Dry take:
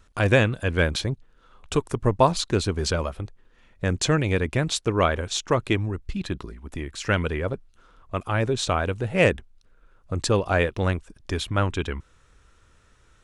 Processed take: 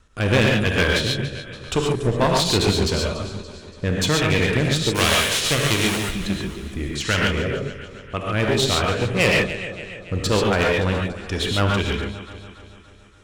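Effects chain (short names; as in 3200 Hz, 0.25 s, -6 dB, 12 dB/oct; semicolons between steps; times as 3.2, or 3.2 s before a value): 4.94–6 spectral whitening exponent 0.3; dynamic EQ 3200 Hz, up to +7 dB, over -40 dBFS, Q 1.1; rotary speaker horn 1.1 Hz, later 6.3 Hz, at 7.67; echo with dull and thin repeats by turns 0.143 s, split 890 Hz, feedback 72%, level -12 dB; non-linear reverb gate 0.16 s rising, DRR -0.5 dB; one-sided clip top -23.5 dBFS, bottom -11 dBFS; gain +3.5 dB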